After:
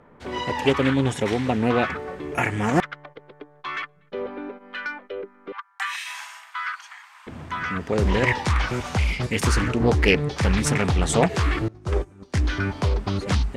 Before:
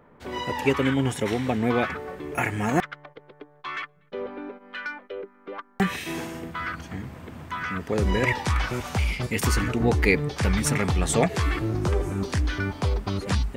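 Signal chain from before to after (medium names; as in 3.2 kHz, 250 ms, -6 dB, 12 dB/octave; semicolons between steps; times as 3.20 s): 5.52–7.27 s: steep high-pass 910 Hz 48 dB/octave; 11.68–12.34 s: gate -22 dBFS, range -23 dB; low-pass 9.7 kHz 12 dB/octave; loudspeaker Doppler distortion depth 0.35 ms; trim +2.5 dB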